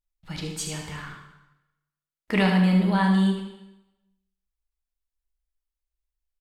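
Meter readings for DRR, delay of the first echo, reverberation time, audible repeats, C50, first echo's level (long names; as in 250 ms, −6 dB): 0.5 dB, 77 ms, 0.95 s, 1, 3.5 dB, −8.5 dB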